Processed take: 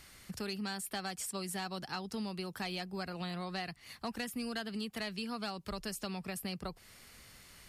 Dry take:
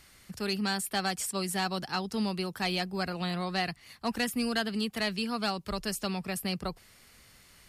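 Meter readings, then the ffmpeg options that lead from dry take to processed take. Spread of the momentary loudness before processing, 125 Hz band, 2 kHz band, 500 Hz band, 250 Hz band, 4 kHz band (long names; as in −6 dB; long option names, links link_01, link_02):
6 LU, −7.0 dB, −8.5 dB, −7.5 dB, −7.5 dB, −8.0 dB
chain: -af "acompressor=threshold=-40dB:ratio=3,volume=1dB"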